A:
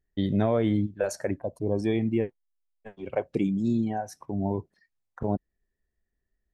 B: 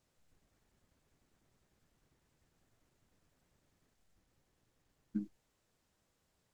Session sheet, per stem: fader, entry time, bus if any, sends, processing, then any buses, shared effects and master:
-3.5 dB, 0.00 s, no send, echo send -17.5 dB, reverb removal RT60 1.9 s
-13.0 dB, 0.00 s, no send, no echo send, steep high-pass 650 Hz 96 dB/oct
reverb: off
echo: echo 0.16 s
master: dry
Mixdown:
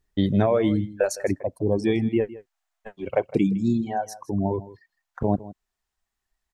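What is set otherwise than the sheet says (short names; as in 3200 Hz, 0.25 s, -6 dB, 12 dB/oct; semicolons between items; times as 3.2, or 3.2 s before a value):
stem A -3.5 dB -> +5.5 dB; stem B -13.0 dB -> -4.5 dB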